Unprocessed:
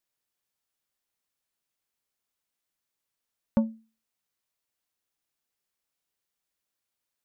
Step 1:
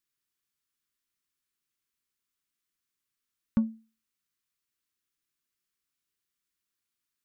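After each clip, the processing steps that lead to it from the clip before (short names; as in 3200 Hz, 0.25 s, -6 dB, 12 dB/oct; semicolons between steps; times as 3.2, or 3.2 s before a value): band shelf 660 Hz -13.5 dB 1.1 oct; gain -1 dB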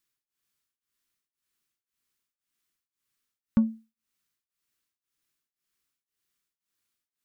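beating tremolo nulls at 1.9 Hz; gain +5 dB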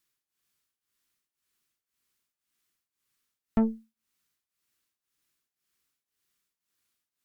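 tube stage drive 27 dB, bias 0.8; gain +7.5 dB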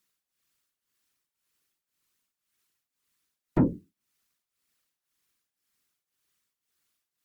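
whisperiser; gain +1.5 dB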